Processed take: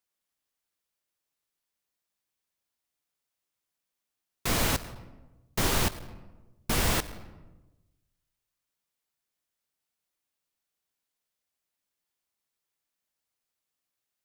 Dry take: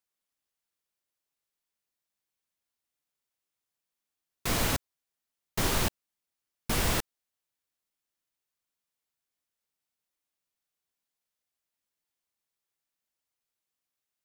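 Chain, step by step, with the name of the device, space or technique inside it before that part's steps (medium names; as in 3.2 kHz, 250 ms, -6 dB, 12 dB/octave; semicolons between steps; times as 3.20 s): saturated reverb return (on a send at -11.5 dB: reverberation RT60 1.0 s, pre-delay 83 ms + saturation -27.5 dBFS, distortion -10 dB); on the sum: trim +1.5 dB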